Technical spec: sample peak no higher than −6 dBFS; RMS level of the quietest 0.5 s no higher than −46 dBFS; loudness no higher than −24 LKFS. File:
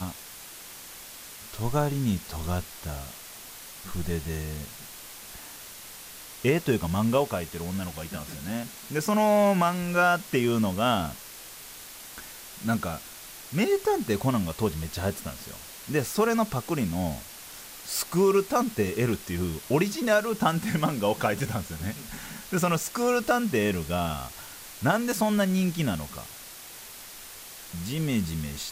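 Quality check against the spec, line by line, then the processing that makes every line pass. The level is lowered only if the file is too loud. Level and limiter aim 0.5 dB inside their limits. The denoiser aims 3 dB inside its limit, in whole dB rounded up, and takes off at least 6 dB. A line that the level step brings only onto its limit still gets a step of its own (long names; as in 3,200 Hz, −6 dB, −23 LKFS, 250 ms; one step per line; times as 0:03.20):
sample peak −10.0 dBFS: in spec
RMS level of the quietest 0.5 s −44 dBFS: out of spec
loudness −27.5 LKFS: in spec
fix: broadband denoise 6 dB, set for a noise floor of −44 dBFS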